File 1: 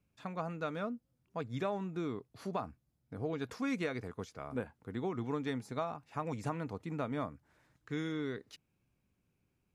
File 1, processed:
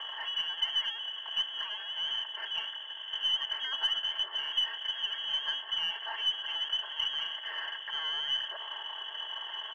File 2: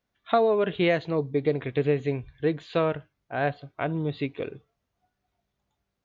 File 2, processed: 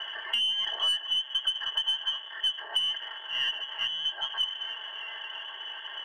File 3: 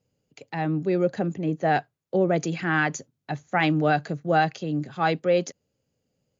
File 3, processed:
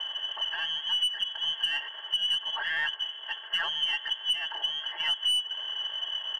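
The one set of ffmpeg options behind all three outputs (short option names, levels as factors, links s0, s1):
-filter_complex "[0:a]aeval=exprs='val(0)+0.5*0.0531*sgn(val(0))':c=same,asplit=3[s0][s1][s2];[s0]bandpass=f=530:t=q:w=8,volume=1[s3];[s1]bandpass=f=1840:t=q:w=8,volume=0.501[s4];[s2]bandpass=f=2480:t=q:w=8,volume=0.355[s5];[s3][s4][s5]amix=inputs=3:normalize=0,aecho=1:1:4.2:0.78,lowpass=f=3000:t=q:w=0.5098,lowpass=f=3000:t=q:w=0.6013,lowpass=f=3000:t=q:w=0.9,lowpass=f=3000:t=q:w=2.563,afreqshift=-3500,asoftclip=type=tanh:threshold=0.15,acompressor=threshold=0.0316:ratio=12,highpass=f=390:w=0.5412,highpass=f=390:w=1.3066,acontrast=33,aeval=exprs='0.126*(cos(1*acos(clip(val(0)/0.126,-1,1)))-cos(1*PI/2))+0.00282*(cos(4*acos(clip(val(0)/0.126,-1,1)))-cos(4*PI/2))':c=same"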